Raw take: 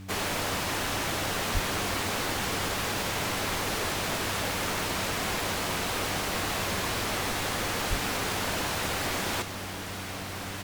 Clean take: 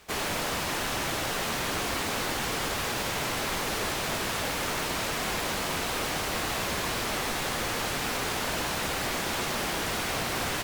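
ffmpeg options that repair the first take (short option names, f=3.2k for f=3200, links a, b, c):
-filter_complex "[0:a]adeclick=t=4,bandreject=f=95.8:t=h:w=4,bandreject=f=191.6:t=h:w=4,bandreject=f=287.4:t=h:w=4,asplit=3[a][b][c];[a]afade=t=out:st=1.53:d=0.02[d];[b]highpass=f=140:w=0.5412,highpass=f=140:w=1.3066,afade=t=in:st=1.53:d=0.02,afade=t=out:st=1.65:d=0.02[e];[c]afade=t=in:st=1.65:d=0.02[f];[d][e][f]amix=inputs=3:normalize=0,asplit=3[g][h][i];[g]afade=t=out:st=7.89:d=0.02[j];[h]highpass=f=140:w=0.5412,highpass=f=140:w=1.3066,afade=t=in:st=7.89:d=0.02,afade=t=out:st=8.01:d=0.02[k];[i]afade=t=in:st=8.01:d=0.02[l];[j][k][l]amix=inputs=3:normalize=0,asetnsamples=n=441:p=0,asendcmd='9.42 volume volume 7.5dB',volume=0dB"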